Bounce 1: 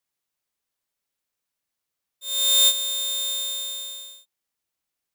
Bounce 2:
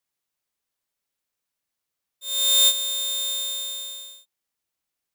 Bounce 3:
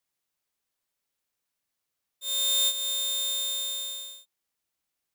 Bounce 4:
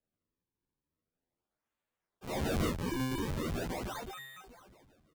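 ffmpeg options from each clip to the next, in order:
-af anull
-af "acompressor=threshold=0.0398:ratio=2"
-filter_complex "[0:a]aecho=1:1:343|686|1029|1372:0.224|0.101|0.0453|0.0204,acrusher=samples=38:mix=1:aa=0.000001:lfo=1:lforange=60.8:lforate=0.41,asplit=2[s0][s1];[s1]adelay=10.7,afreqshift=1.2[s2];[s0][s2]amix=inputs=2:normalize=1,volume=0.596"

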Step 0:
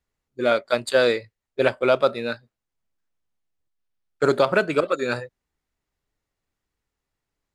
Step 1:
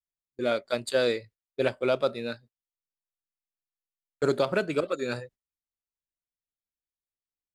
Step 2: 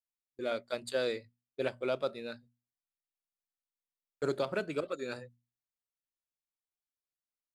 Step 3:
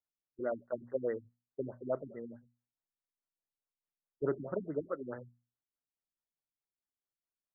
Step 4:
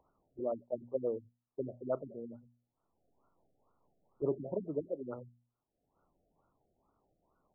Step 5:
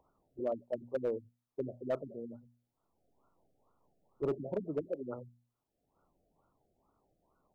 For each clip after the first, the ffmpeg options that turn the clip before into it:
-af "agate=range=0.1:threshold=0.00631:ratio=16:detection=peak,equalizer=f=1200:t=o:w=2.2:g=-6,volume=0.668"
-af "bandreject=f=60:t=h:w=6,bandreject=f=120:t=h:w=6,bandreject=f=180:t=h:w=6,bandreject=f=240:t=h:w=6,volume=0.422"
-af "afftfilt=real='re*lt(b*sr/1024,310*pow(2100/310,0.5+0.5*sin(2*PI*4.7*pts/sr)))':imag='im*lt(b*sr/1024,310*pow(2100/310,0.5+0.5*sin(2*PI*4.7*pts/sr)))':win_size=1024:overlap=0.75"
-af "acompressor=mode=upward:threshold=0.00794:ratio=2.5,afftfilt=real='re*lt(b*sr/1024,750*pow(1500/750,0.5+0.5*sin(2*PI*2.2*pts/sr)))':imag='im*lt(b*sr/1024,750*pow(1500/750,0.5+0.5*sin(2*PI*2.2*pts/sr)))':win_size=1024:overlap=0.75"
-af "asoftclip=type=hard:threshold=0.0422,volume=1.12"

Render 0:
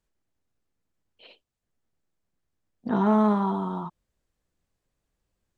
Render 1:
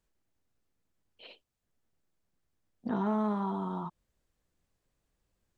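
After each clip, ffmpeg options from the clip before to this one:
-af "acompressor=threshold=0.0178:ratio=2"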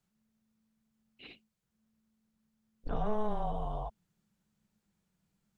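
-af "afreqshift=-220"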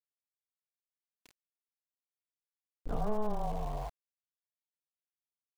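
-af "lowpass=f=1400:p=1,aeval=exprs='val(0)*gte(abs(val(0)),0.00501)':c=same"

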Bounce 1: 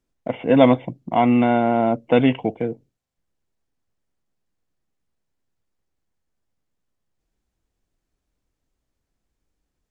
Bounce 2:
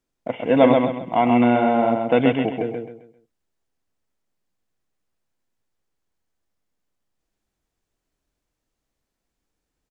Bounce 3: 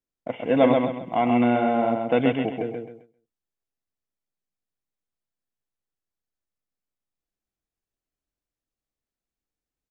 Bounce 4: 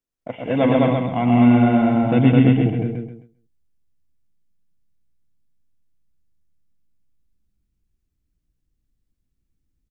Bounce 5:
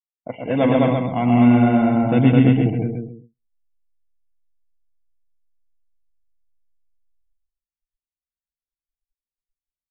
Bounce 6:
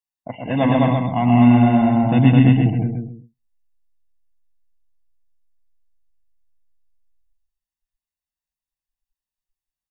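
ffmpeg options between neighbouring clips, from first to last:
-filter_complex "[0:a]acrossover=split=3000[s0][s1];[s1]acompressor=threshold=0.01:ratio=4:attack=1:release=60[s2];[s0][s2]amix=inputs=2:normalize=0,lowshelf=f=240:g=-6.5,asplit=2[s3][s4];[s4]aecho=0:1:132|264|396|528:0.631|0.208|0.0687|0.0227[s5];[s3][s5]amix=inputs=2:normalize=0"
-af "agate=range=0.355:threshold=0.00631:ratio=16:detection=peak,bandreject=f=940:w=20,volume=0.668"
-filter_complex "[0:a]asubboost=boost=11:cutoff=200,asplit=2[s0][s1];[s1]aecho=0:1:116.6|209.9:0.501|0.891[s2];[s0][s2]amix=inputs=2:normalize=0"
-af "afftdn=nr=34:nf=-43"
-af "aecho=1:1:1.1:0.58"

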